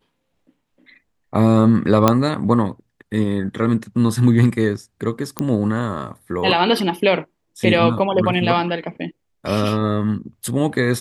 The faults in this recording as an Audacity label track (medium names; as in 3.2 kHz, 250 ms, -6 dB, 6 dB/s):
2.080000	2.080000	pop 0 dBFS
5.390000	5.390000	pop -6 dBFS